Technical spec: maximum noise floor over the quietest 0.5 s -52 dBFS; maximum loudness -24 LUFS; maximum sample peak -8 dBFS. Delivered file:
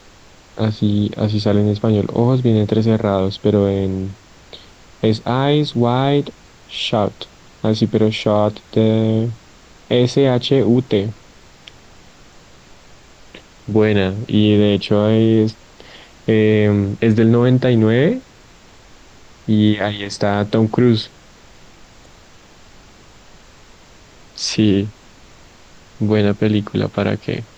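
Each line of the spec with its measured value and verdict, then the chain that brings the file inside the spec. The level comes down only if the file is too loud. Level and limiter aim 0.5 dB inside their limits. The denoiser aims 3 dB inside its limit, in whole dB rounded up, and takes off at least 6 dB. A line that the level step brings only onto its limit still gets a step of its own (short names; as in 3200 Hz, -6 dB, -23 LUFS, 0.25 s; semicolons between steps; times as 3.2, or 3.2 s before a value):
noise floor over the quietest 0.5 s -45 dBFS: fail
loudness -16.5 LUFS: fail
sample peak -3.0 dBFS: fail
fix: gain -8 dB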